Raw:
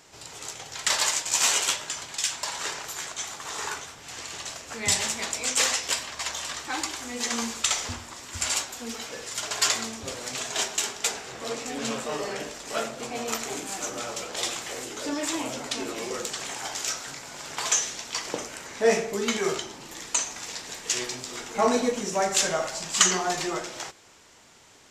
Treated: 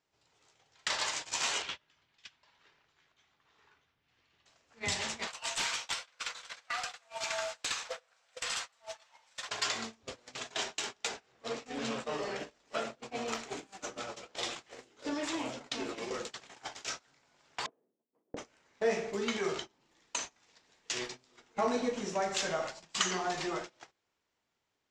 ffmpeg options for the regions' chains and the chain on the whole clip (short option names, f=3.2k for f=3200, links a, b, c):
-filter_complex "[0:a]asettb=1/sr,asplit=3[a][b][c];[a]atrim=end=1.624[d];[b]atrim=start=1.62:end=4.46,asetpts=PTS-STARTPTS,afade=t=in:d=0.004:c=qsin,afade=t=out:st=2.836:d=0.004:c=qsin,lowpass=3.2k,equalizer=f=740:w=0.46:g=-8[e];[c]atrim=start=4.456[f];[d][e]acrossfade=d=0.004:c1=hsin:c2=qsin[g];[g][f]acrossfade=d=0.004:c1=qsin:c2=hsin,asettb=1/sr,asplit=3[h][i][j];[h]atrim=end=5.274[k];[i]atrim=start=5.27:end=9.49,asetpts=PTS-STARTPTS,afade=t=in:d=0.004:c=qsin,afade=t=out:st=4.216:d=0.004:c=qsin,afreqshift=420,acrusher=bits=2:mode=log:mix=0:aa=0.000001,aeval=exprs='0.133*(abs(mod(val(0)/0.133+3,4)-2)-1)':c=same[l];[j]atrim=start=9.486[m];[k][l]acrossfade=d=0.004:c1=hsin:c2=qsin[n];[n][m]acrossfade=d=0.004:c1=qsin:c2=hsin,asettb=1/sr,asplit=3[o][p][q];[o]atrim=end=17.664[r];[p]atrim=start=17.66:end=18.37,asetpts=PTS-STARTPTS,afade=t=in:d=0.004:c=qsin,afade=t=out:st=0.706:d=0.004:c=qsin,agate=range=-33dB:threshold=-31dB:ratio=3:release=100:detection=peak,asuperpass=centerf=310:order=4:qfactor=1[s];[q]atrim=start=18.366[t];[r][s]acrossfade=d=0.004:c1=hsin:c2=qsin[u];[u][t]acrossfade=d=0.004:c1=qsin:c2=hsin,lowpass=5k,agate=range=-27dB:threshold=-33dB:ratio=16:detection=peak,acompressor=threshold=-42dB:ratio=1.5"